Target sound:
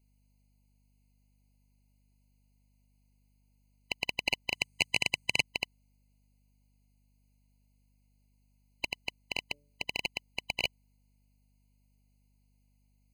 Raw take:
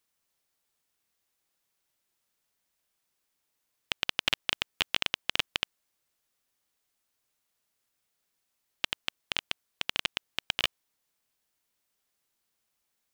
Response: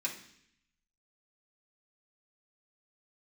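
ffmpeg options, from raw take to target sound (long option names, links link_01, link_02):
-filter_complex "[0:a]asettb=1/sr,asplit=3[link_01][link_02][link_03];[link_01]atrim=end=9.444[link_04];[link_02]atrim=start=9.44:end=9.84,asetpts=PTS-STARTPTS,afade=type=in:duration=0.004:curve=qsin,afade=type=out:start_time=0.396:duration=0.004:curve=qsin,bandreject=frequency=144.6:width_type=h:width=4,bandreject=frequency=289.2:width_type=h:width=4,bandreject=frequency=433.8:width_type=h:width=4,bandreject=frequency=578.4:width_type=h:width=4[link_05];[link_03]atrim=start=9.836[link_06];[link_04][link_05]acrossfade=duration=0.004:curve1=hsin:curve2=qsin[link_07];[link_07][link_06]acrossfade=duration=0.004:curve1=qsin:curve2=hsin,aeval=exprs='val(0)+0.000398*(sin(2*PI*50*n/s)+sin(2*PI*2*50*n/s)/2+sin(2*PI*3*50*n/s)/3+sin(2*PI*4*50*n/s)/4+sin(2*PI*5*50*n/s)/5)':channel_layout=same,asettb=1/sr,asplit=3[link_08][link_09][link_10];[link_08]atrim=end=4.534[link_11];[link_09]atrim=start=4.53:end=5.42,asetpts=PTS-STARTPTS,afade=type=in:duration=0.004:curve=qsin,afade=type=out:start_time=0.886:duration=0.004:curve=qsin,equalizer=frequency=125:width_type=o:width=1:gain=6,equalizer=frequency=2000:width_type=o:width=1:gain=4,equalizer=frequency=8000:width_type=o:width=1:gain=10[link_12];[link_10]atrim=start=5.416[link_13];[link_11][link_12]acrossfade=duration=0.004:curve1=hsin:curve2=qsin[link_14];[link_14][link_13]acrossfade=duration=0.004:curve1=qsin:curve2=hsin,afftfilt=real='re*eq(mod(floor(b*sr/1024/1000),2),0)':imag='im*eq(mod(floor(b*sr/1024/1000),2),0)':win_size=1024:overlap=0.75"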